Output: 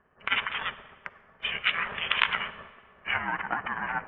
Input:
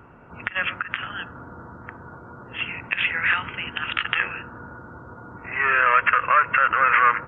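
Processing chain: low-pass opened by the level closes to 1900 Hz, open at -14.5 dBFS; gate -38 dBFS, range -15 dB; treble ducked by the level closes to 580 Hz, closed at -17 dBFS; tilt shelf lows -6.5 dB, about 1400 Hz; ring modulator 310 Hz; granular stretch 0.56×, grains 0.124 s; on a send: reverb RT60 1.6 s, pre-delay 37 ms, DRR 16 dB; on the sum: gain +4.5 dB

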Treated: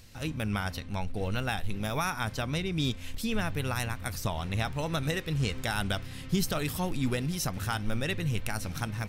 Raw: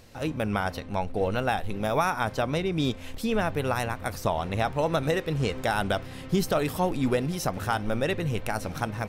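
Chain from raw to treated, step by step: bell 590 Hz -12 dB 2.6 oct; gain +2 dB

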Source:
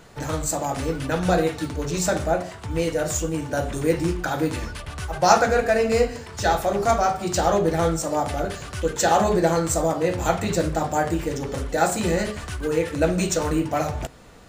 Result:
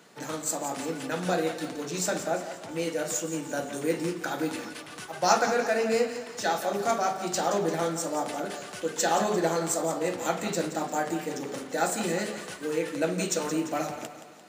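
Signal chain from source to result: HPF 190 Hz 24 dB/oct; bell 660 Hz -3.5 dB 2.5 oct; split-band echo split 420 Hz, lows 0.124 s, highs 0.173 s, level -11 dB; gain -3.5 dB

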